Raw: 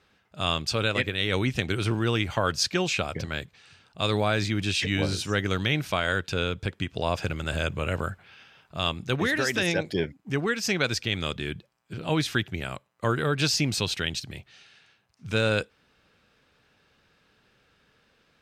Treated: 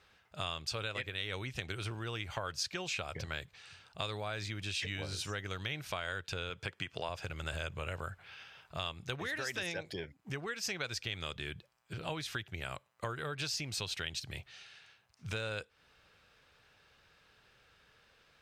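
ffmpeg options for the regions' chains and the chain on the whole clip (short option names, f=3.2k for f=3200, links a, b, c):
-filter_complex "[0:a]asettb=1/sr,asplit=3[a][b][c];[a]atrim=end=6.504[d];[b]atrim=start=6.5:end=7.09,asetpts=PTS-STARTPTS,afade=t=in:d=0.004:c=qsin,afade=t=out:st=0.586:d=0.004:c=qsin,highpass=120,equalizer=f=2.1k:t=o:w=3:g=4,bandreject=f=3.8k:w=11[e];[c]atrim=start=7.086[f];[d][e]acrossfade=d=0.004:c1=hsin:c2=qsin[g];[g][f]acrossfade=d=0.004:c1=qsin:c2=hsin,acompressor=threshold=-34dB:ratio=5,equalizer=f=240:t=o:w=1.4:g=-9.5"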